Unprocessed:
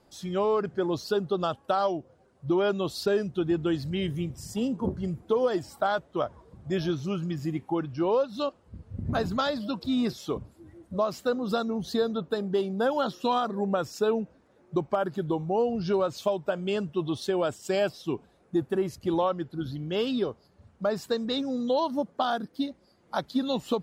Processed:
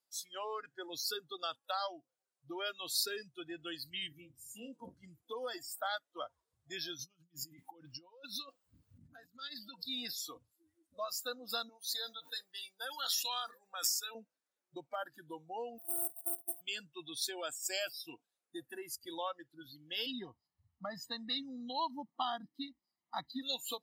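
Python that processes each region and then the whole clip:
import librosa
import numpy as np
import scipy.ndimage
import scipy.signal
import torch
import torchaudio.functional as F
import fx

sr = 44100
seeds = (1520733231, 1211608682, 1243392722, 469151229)

y = fx.chain(x, sr, fx.high_shelf(hz=2600.0, db=-11.5),
    fx.doubler(ms=33.0, db=-7), at=(4.08, 4.73))
y = fx.chain(y, sr, fx.peak_eq(hz=180.0, db=12.0, octaves=0.23),
    fx.over_compress(threshold_db=-35.0, ratio=-1.0), at=(6.99, 9.82))
y = fx.chain(y, sr, fx.highpass(hz=1200.0, slope=6),
    fx.sustainer(db_per_s=57.0), at=(11.69, 14.15))
y = fx.chain(y, sr, fx.sample_sort(block=128),
    fx.cheby1_bandstop(low_hz=1200.0, high_hz=8400.0, order=5),
    fx.level_steps(step_db=15), at=(15.78, 16.61))
y = fx.chain(y, sr, fx.lowpass(hz=2200.0, slope=6),
    fx.low_shelf(hz=380.0, db=8.5),
    fx.comb(ms=1.0, depth=0.71), at=(20.06, 23.42))
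y = fx.noise_reduce_blind(y, sr, reduce_db=19)
y = np.diff(y, prepend=0.0)
y = y * librosa.db_to_amplitude(6.5)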